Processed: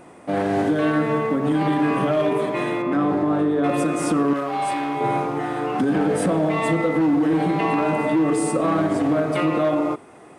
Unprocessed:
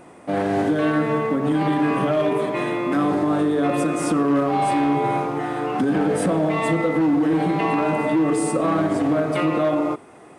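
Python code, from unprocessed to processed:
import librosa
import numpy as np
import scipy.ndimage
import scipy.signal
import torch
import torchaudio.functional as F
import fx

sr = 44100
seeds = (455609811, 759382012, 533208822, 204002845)

y = fx.lowpass(x, sr, hz=2100.0, slope=6, at=(2.82, 3.64))
y = fx.low_shelf(y, sr, hz=490.0, db=-10.5, at=(4.33, 5.01))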